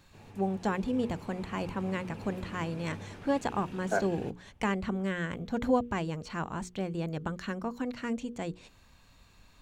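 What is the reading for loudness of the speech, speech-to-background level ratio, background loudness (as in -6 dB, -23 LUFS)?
-33.5 LUFS, 13.0 dB, -46.5 LUFS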